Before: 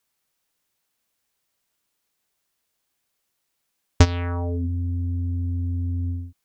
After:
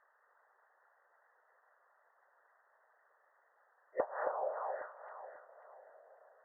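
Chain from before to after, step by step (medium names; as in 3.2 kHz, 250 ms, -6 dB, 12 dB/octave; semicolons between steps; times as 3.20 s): FFT band-pass 510–1900 Hz; whisper effect; compression 16:1, threshold -46 dBFS, peak gain reduction 26 dB; echo whose repeats swap between lows and highs 271 ms, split 1.4 kHz, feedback 54%, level -5 dB; low-pass that closes with the level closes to 700 Hz, closed at -46.5 dBFS; trim +15.5 dB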